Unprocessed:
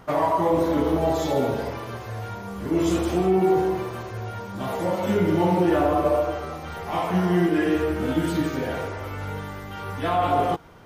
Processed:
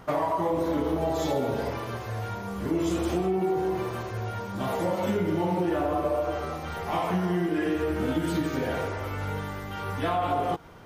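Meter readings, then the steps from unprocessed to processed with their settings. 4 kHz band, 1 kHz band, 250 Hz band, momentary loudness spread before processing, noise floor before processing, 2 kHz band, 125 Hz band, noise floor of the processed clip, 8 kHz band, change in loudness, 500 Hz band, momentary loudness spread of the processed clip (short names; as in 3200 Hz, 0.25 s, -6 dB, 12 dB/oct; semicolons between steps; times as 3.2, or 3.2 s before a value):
-3.0 dB, -4.0 dB, -4.5 dB, 13 LU, -36 dBFS, -3.0 dB, -3.5 dB, -36 dBFS, -3.0 dB, -4.5 dB, -4.5 dB, 7 LU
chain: compressor, threshold -23 dBFS, peak gain reduction 7.5 dB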